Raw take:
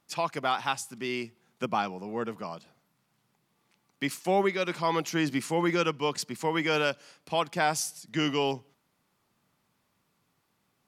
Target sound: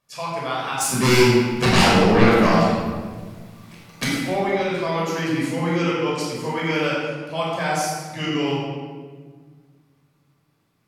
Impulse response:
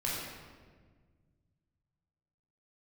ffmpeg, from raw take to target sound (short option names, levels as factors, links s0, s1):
-filter_complex "[0:a]asplit=3[s0][s1][s2];[s0]afade=t=out:st=0.8:d=0.02[s3];[s1]aeval=exprs='0.188*sin(PI/2*6.31*val(0)/0.188)':c=same,afade=t=in:st=0.8:d=0.02,afade=t=out:st=4.03:d=0.02[s4];[s2]afade=t=in:st=4.03:d=0.02[s5];[s3][s4][s5]amix=inputs=3:normalize=0[s6];[1:a]atrim=start_sample=2205[s7];[s6][s7]afir=irnorm=-1:irlink=0,volume=0.841"